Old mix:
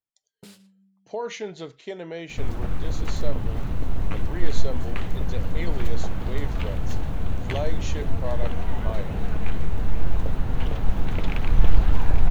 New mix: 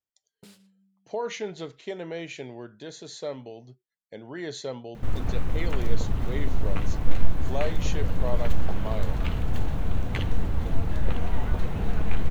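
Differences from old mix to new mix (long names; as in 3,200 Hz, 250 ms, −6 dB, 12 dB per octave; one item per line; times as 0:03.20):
first sound −4.5 dB
second sound: entry +2.65 s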